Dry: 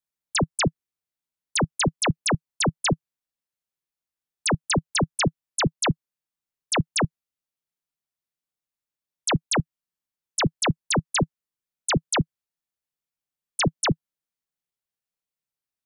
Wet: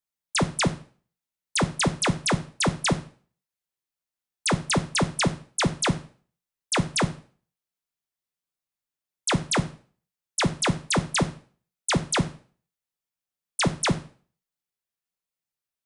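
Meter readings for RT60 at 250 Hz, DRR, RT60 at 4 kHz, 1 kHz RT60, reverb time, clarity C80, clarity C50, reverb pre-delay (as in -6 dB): 0.40 s, 8.0 dB, 0.40 s, 0.45 s, 0.45 s, 20.0 dB, 16.0 dB, 4 ms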